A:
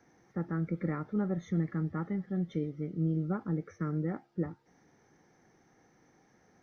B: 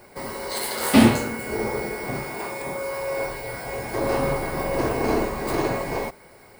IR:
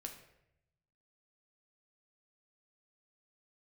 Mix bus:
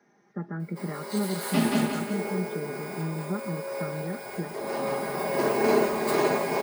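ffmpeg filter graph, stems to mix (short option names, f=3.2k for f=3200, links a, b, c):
-filter_complex "[0:a]highshelf=f=4k:g=-6.5,volume=0.5dB,asplit=2[a][b];[1:a]adelay=600,volume=-1dB,asplit=2[c][d];[d]volume=-12.5dB[e];[b]apad=whole_len=317191[f];[c][f]sidechaincompress=threshold=-36dB:ratio=8:attack=16:release=1390[g];[e]aecho=0:1:179|358|537|716|895|1074:1|0.44|0.194|0.0852|0.0375|0.0165[h];[a][g][h]amix=inputs=3:normalize=0,highpass=180,aecho=1:1:4.9:0.65"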